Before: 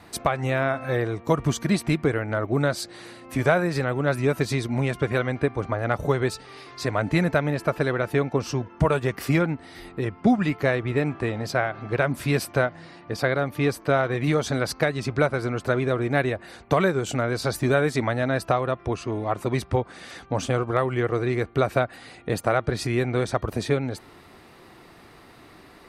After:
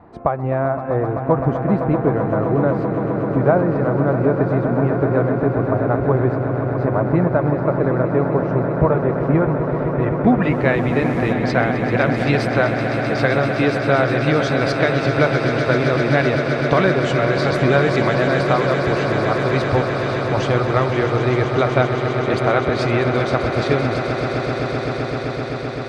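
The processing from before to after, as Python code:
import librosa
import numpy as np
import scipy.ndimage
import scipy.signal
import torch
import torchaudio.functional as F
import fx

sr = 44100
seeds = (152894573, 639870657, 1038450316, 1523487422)

y = fx.dmg_noise_colour(x, sr, seeds[0], colour='violet', level_db=-40.0, at=(10.42, 11.32), fade=0.02)
y = fx.filter_sweep_lowpass(y, sr, from_hz=920.0, to_hz=3900.0, start_s=9.23, end_s=11.12, q=1.1)
y = fx.echo_swell(y, sr, ms=129, loudest=8, wet_db=-11.0)
y = F.gain(torch.from_numpy(y), 3.5).numpy()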